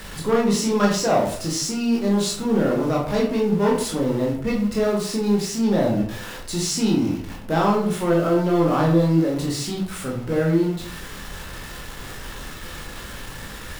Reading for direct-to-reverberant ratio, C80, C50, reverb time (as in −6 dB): −3.0 dB, 9.5 dB, 5.0 dB, 0.55 s